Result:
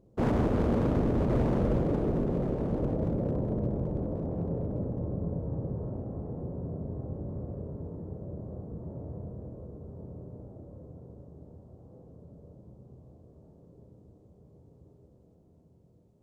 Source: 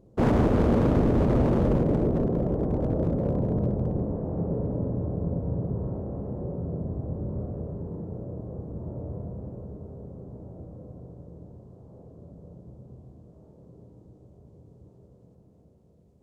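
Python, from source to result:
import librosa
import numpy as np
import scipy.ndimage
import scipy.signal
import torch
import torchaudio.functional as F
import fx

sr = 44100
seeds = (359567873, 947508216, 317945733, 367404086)

y = x + 10.0 ** (-8.0 / 20.0) * np.pad(x, (int(1126 * sr / 1000.0), 0))[:len(x)]
y = y * 10.0 ** (-5.0 / 20.0)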